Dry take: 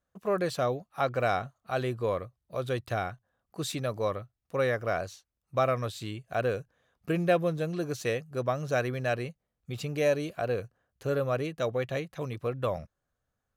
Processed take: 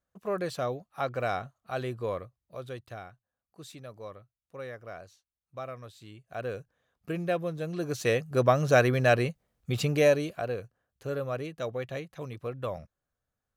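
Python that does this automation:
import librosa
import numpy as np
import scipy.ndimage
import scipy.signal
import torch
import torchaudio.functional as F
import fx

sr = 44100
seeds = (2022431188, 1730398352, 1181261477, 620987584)

y = fx.gain(x, sr, db=fx.line((2.17, -3.0), (3.12, -13.0), (5.98, -13.0), (6.58, -4.5), (7.53, -4.5), (8.32, 7.0), (9.87, 7.0), (10.59, -4.0)))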